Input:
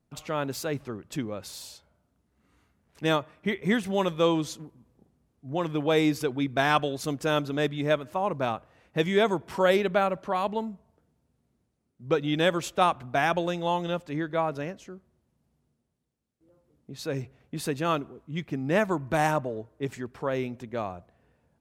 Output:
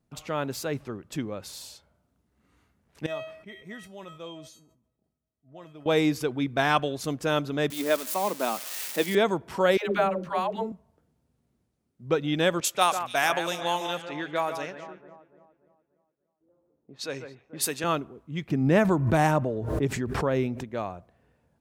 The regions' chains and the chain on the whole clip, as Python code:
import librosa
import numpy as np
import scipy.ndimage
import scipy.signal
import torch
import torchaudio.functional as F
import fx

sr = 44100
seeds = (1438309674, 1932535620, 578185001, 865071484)

y = fx.chain(x, sr, fx.comb_fb(f0_hz=640.0, decay_s=0.3, harmonics='all', damping=0.0, mix_pct=90),
    fx.sustainer(db_per_s=77.0), at=(3.06, 5.86))
y = fx.chain(y, sr, fx.crossing_spikes(level_db=-23.0),
    fx.steep_highpass(hz=190.0, slope=48), at=(7.7, 9.15))
y = fx.chain(y, sr, fx.median_filter(points=3),
    fx.hum_notches(base_hz=60, count=9),
    fx.dispersion(late='lows', ms=133.0, hz=370.0), at=(9.77, 10.72))
y = fx.chain(y, sr, fx.riaa(side='recording'),
    fx.echo_alternate(ms=146, hz=2400.0, feedback_pct=66, wet_db=-8.5),
    fx.env_lowpass(base_hz=760.0, full_db=-25.0), at=(12.6, 17.84))
y = fx.chain(y, sr, fx.low_shelf(hz=400.0, db=6.5),
    fx.pre_swell(db_per_s=44.0), at=(18.5, 20.64))